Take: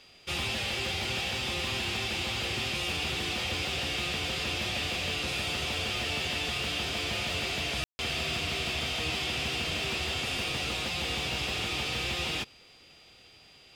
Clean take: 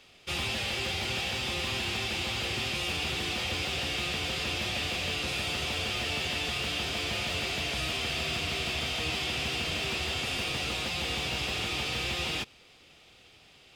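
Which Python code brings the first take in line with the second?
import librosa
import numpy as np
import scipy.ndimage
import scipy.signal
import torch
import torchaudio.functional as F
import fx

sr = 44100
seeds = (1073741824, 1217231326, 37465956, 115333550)

y = fx.notch(x, sr, hz=4800.0, q=30.0)
y = fx.fix_ambience(y, sr, seeds[0], print_start_s=12.57, print_end_s=13.07, start_s=7.84, end_s=7.99)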